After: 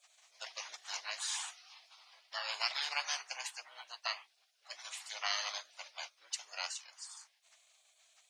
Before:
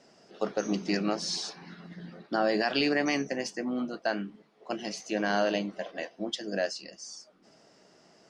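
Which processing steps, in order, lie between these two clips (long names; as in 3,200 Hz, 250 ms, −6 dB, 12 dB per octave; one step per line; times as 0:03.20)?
Chebyshev high-pass filter 880 Hz, order 5
gate on every frequency bin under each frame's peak −15 dB weak
level +7 dB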